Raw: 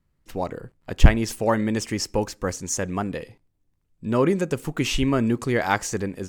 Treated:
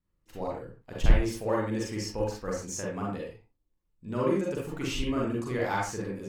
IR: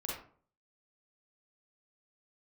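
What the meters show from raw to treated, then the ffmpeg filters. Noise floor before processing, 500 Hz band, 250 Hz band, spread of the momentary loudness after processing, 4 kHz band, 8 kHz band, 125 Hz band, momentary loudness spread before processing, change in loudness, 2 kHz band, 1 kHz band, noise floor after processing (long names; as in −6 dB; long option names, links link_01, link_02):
−70 dBFS, −5.5 dB, −7.5 dB, 11 LU, −8.5 dB, −9.5 dB, −8.0 dB, 12 LU, −7.0 dB, −8.5 dB, −6.5 dB, −76 dBFS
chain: -filter_complex "[0:a]asoftclip=type=tanh:threshold=-6dB[link_01];[1:a]atrim=start_sample=2205,afade=type=out:start_time=0.22:duration=0.01,atrim=end_sample=10143[link_02];[link_01][link_02]afir=irnorm=-1:irlink=0,volume=-8.5dB"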